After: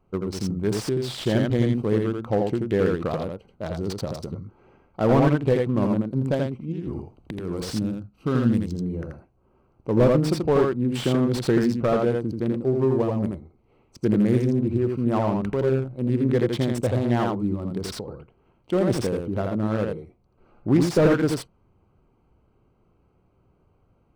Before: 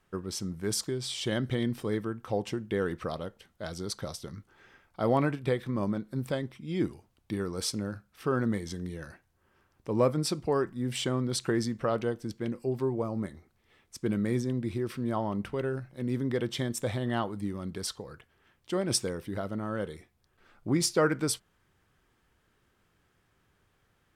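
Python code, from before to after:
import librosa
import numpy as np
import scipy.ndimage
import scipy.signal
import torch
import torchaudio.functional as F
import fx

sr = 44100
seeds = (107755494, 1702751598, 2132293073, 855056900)

y = fx.wiener(x, sr, points=25)
y = fx.over_compress(y, sr, threshold_db=-40.0, ratio=-1.0, at=(6.71, 7.67), fade=0.02)
y = fx.spec_box(y, sr, start_s=7.67, length_s=1.08, low_hz=340.0, high_hz=2400.0, gain_db=-7)
y = y + 10.0 ** (-4.0 / 20.0) * np.pad(y, (int(83 * sr / 1000.0), 0))[:len(y)]
y = fx.slew_limit(y, sr, full_power_hz=40.0)
y = y * 10.0 ** (8.0 / 20.0)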